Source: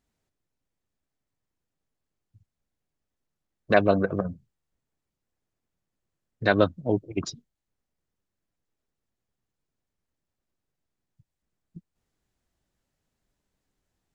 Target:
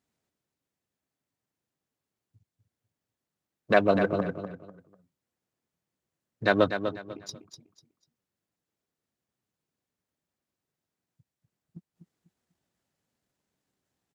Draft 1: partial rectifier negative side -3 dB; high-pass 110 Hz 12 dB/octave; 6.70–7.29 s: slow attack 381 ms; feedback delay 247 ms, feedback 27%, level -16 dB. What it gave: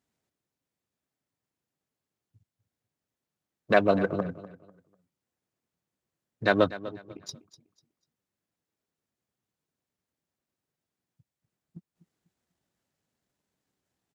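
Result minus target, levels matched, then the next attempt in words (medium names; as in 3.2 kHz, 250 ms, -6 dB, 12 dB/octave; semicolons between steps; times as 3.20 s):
echo-to-direct -7.5 dB
partial rectifier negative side -3 dB; high-pass 110 Hz 12 dB/octave; 6.70–7.29 s: slow attack 381 ms; feedback delay 247 ms, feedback 27%, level -8.5 dB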